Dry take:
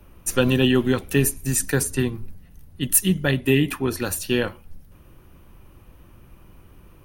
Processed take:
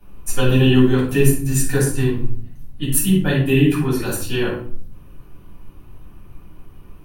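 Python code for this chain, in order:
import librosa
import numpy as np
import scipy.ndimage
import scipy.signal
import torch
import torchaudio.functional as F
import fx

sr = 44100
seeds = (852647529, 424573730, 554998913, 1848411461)

y = fx.room_shoebox(x, sr, seeds[0], volume_m3=540.0, walls='furnished', distance_m=8.0)
y = y * 10.0 ** (-9.0 / 20.0)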